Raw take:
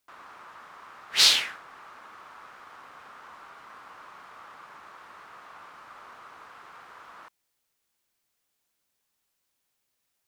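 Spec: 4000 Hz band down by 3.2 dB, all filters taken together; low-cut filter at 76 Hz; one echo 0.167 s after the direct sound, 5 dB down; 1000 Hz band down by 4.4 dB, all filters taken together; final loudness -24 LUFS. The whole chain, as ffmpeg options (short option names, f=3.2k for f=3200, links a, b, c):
-af "highpass=76,equalizer=f=1k:t=o:g=-5.5,equalizer=f=4k:t=o:g=-3.5,aecho=1:1:167:0.562,volume=-1dB"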